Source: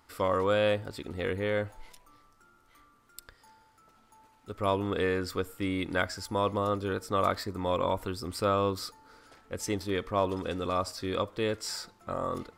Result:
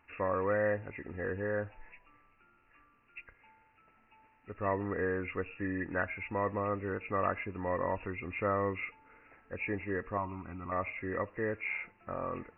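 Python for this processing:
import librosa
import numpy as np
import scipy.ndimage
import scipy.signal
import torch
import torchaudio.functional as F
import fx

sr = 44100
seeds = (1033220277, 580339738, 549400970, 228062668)

y = fx.freq_compress(x, sr, knee_hz=1600.0, ratio=4.0)
y = fx.fixed_phaser(y, sr, hz=1800.0, stages=6, at=(10.17, 10.72))
y = y * 10.0 ** (-4.5 / 20.0)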